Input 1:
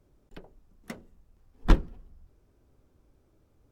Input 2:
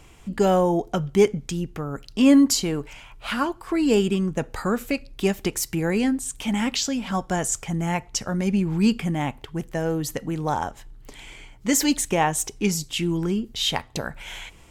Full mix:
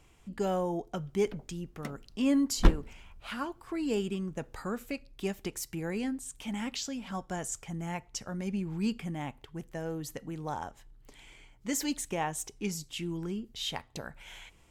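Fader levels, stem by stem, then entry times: -1.5, -11.5 dB; 0.95, 0.00 s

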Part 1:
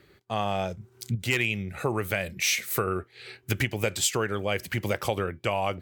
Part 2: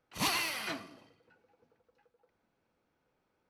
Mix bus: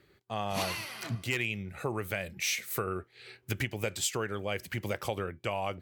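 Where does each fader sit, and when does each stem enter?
-6.0, -4.0 dB; 0.00, 0.35 s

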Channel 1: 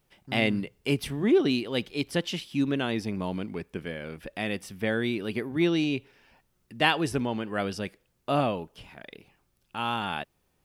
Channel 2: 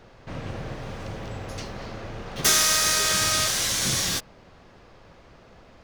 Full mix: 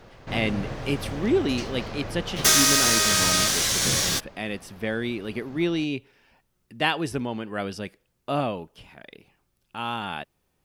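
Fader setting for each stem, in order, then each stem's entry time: -0.5, +1.5 dB; 0.00, 0.00 s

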